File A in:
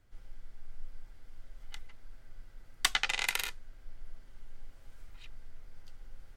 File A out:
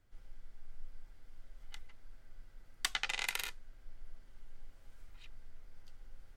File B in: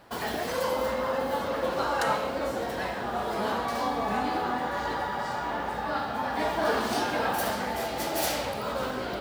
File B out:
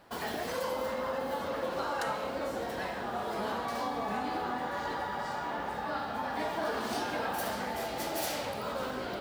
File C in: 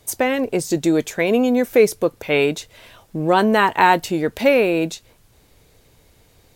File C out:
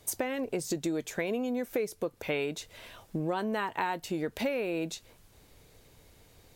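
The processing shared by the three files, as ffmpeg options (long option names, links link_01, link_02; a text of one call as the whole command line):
ffmpeg -i in.wav -af "bandreject=frequency=60:width_type=h:width=6,bandreject=frequency=120:width_type=h:width=6,acompressor=threshold=-25dB:ratio=6,volume=-4dB" out.wav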